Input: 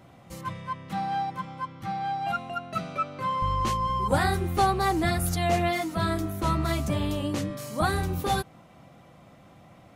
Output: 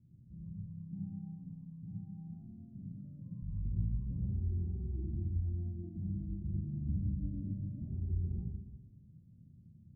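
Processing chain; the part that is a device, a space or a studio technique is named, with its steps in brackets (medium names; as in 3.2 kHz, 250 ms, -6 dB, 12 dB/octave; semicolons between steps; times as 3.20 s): club heard from the street (peak limiter -20 dBFS, peak gain reduction 10 dB; low-pass 200 Hz 24 dB/octave; reverberation RT60 1.0 s, pre-delay 65 ms, DRR -4 dB); trim -8 dB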